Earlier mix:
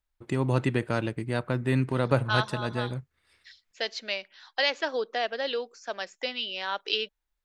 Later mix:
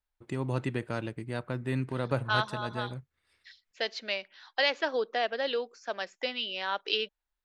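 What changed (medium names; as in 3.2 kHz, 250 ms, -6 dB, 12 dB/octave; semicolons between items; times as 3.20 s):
first voice -6.0 dB; second voice: add distance through air 76 m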